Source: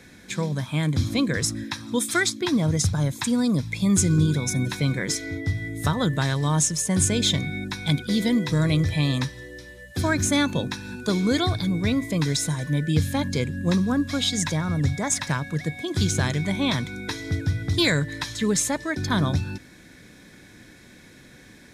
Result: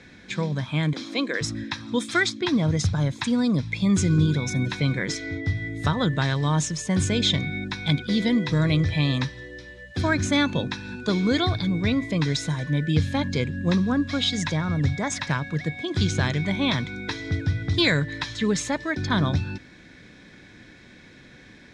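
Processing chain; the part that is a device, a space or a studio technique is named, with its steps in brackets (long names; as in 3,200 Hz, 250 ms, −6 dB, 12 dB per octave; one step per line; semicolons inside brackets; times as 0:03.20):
0:00.93–0:01.41: high-pass filter 290 Hz 24 dB per octave
high-frequency loss of the air 120 metres
presence and air boost (parametric band 3,100 Hz +3.5 dB 2 octaves; high-shelf EQ 12,000 Hz +5.5 dB)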